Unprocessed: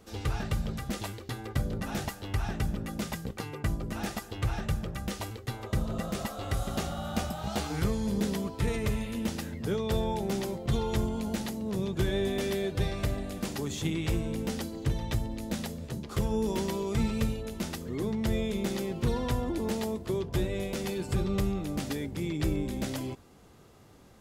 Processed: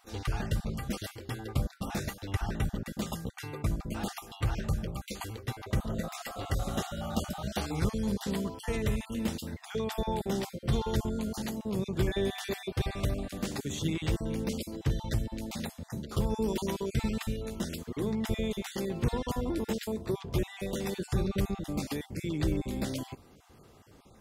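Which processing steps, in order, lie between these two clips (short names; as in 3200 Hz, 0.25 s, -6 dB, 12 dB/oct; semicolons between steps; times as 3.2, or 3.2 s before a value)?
random spectral dropouts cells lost 24%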